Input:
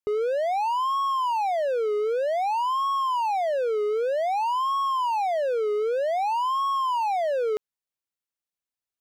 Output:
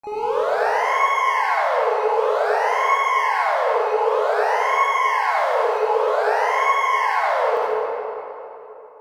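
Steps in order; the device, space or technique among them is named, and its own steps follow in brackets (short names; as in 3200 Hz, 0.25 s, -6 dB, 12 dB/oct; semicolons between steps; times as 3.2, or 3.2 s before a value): 5.31–5.79 high shelf 4100 Hz +6 dB; shimmer-style reverb (harmoniser +12 st -5 dB; reverb RT60 3.2 s, pre-delay 48 ms, DRR -7.5 dB); gain -4.5 dB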